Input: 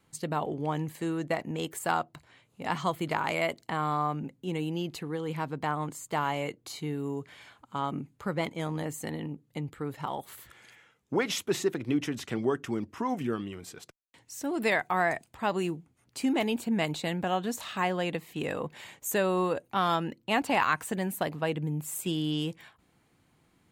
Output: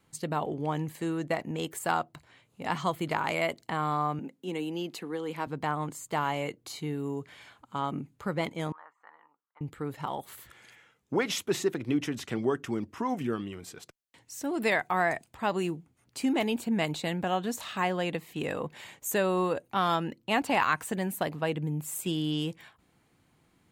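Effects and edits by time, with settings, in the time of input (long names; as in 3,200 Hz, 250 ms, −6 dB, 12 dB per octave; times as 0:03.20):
0:04.19–0:05.47: high-pass filter 200 Hz 24 dB per octave
0:08.72–0:09.61: flat-topped band-pass 1,200 Hz, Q 2.3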